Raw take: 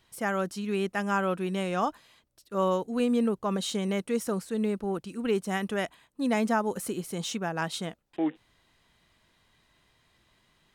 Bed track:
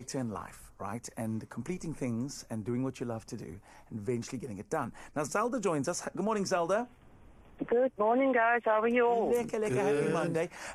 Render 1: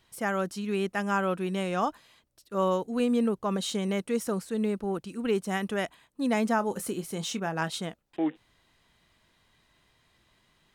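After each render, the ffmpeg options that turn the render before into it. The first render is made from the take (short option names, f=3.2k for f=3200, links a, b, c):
-filter_complex "[0:a]asettb=1/sr,asplit=3[a][b][c];[a]atrim=end=6.564[d];[b]atrim=start=6.56:end=7.7,asetpts=PTS-STARTPTS,afade=t=in:d=0.004:c=qsin,afade=t=out:st=1.136:d=0.004:c=qsin,asplit=2[e][f];[f]adelay=25,volume=-13dB[g];[e][g]amix=inputs=2:normalize=0,atrim=end_sample=50274[h];[c]atrim=start=7.696[i];[d][h]acrossfade=d=0.004:c1=hsin:c2=qsin[j];[j][i]acrossfade=d=0.004:c1=qsin:c2=hsin"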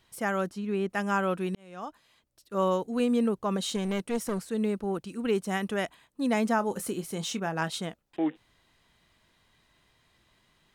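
-filter_complex "[0:a]asettb=1/sr,asplit=3[a][b][c];[a]atrim=end=0.494[d];[b]atrim=start=0.49:end=0.9,asetpts=PTS-STARTPTS,afade=t=in:d=0.004:c=qsin,afade=t=out:st=0.406:d=0.004:c=qsin,highshelf=f=2.3k:g=-10.5[e];[c]atrim=start=0.896[f];[d][e]acrossfade=d=0.004:c1=hsin:c2=qsin[g];[g][f]acrossfade=d=0.004:c1=qsin:c2=hsin,asettb=1/sr,asplit=3[h][i][j];[h]atrim=end=3.764[k];[i]atrim=start=3.76:end=4.5,asetpts=PTS-STARTPTS,afade=t=in:d=0.004:c=qsin,afade=t=out:st=0.736:d=0.004:c=qsin,aeval=exprs='clip(val(0),-1,0.0282)':c=same[l];[j]atrim=start=4.496[m];[k][l]acrossfade=d=0.004:c1=hsin:c2=qsin[n];[n][m]acrossfade=d=0.004:c1=qsin:c2=hsin,asplit=2[o][p];[o]atrim=end=1.55,asetpts=PTS-STARTPTS,afade=t=out:st=1.546:d=0.004:c=hsin[q];[p]atrim=start=1.55,asetpts=PTS-STARTPTS,afade=t=in:d=1.02[r];[q][r]concat=n=2:v=0:a=1"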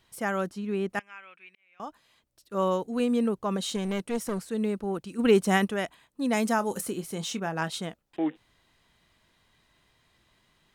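-filter_complex "[0:a]asettb=1/sr,asplit=3[a][b][c];[a]atrim=end=0.994[d];[b]atrim=start=0.99:end=1.8,asetpts=PTS-STARTPTS,afade=t=in:d=0.004:c=qsin,afade=t=out:st=0.806:d=0.004:c=qsin,bandpass=f=2.3k:t=q:w=6.7[e];[c]atrim=start=1.796[f];[d][e]acrossfade=d=0.004:c1=hsin:c2=qsin[g];[g][f]acrossfade=d=0.004:c1=qsin:c2=hsin,asplit=3[h][i][j];[h]afade=t=out:st=5.18:d=0.02[k];[i]acontrast=87,afade=t=in:st=5.18:d=0.02,afade=t=out:st=5.64:d=0.02[l];[j]afade=t=in:st=5.64:d=0.02[m];[k][l][m]amix=inputs=3:normalize=0,asettb=1/sr,asplit=3[n][o][p];[n]atrim=end=6.334[q];[o]atrim=start=6.33:end=6.81,asetpts=PTS-STARTPTS,afade=t=in:d=0.004:c=qsin,afade=t=out:st=0.476:d=0.004:c=qsin,highshelf=f=4.8k:g=10[r];[p]atrim=start=6.806[s];[q][r]acrossfade=d=0.004:c1=hsin:c2=qsin[t];[t][s]acrossfade=d=0.004:c1=qsin:c2=hsin"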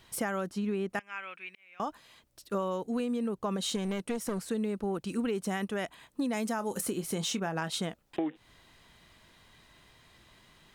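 -filter_complex "[0:a]asplit=2[a][b];[b]alimiter=limit=-19.5dB:level=0:latency=1:release=65,volume=2dB[c];[a][c]amix=inputs=2:normalize=0,acompressor=threshold=-29dB:ratio=10"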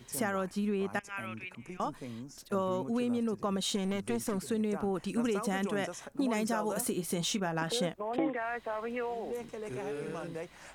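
-filter_complex "[1:a]volume=-9dB[a];[0:a][a]amix=inputs=2:normalize=0"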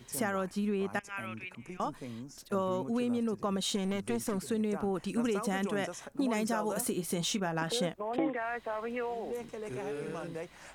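-af anull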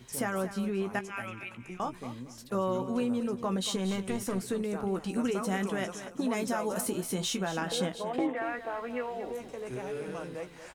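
-filter_complex "[0:a]asplit=2[a][b];[b]adelay=16,volume=-8.5dB[c];[a][c]amix=inputs=2:normalize=0,aecho=1:1:231|462|693:0.251|0.0578|0.0133"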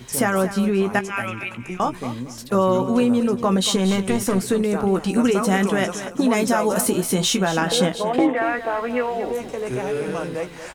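-af "volume=12dB"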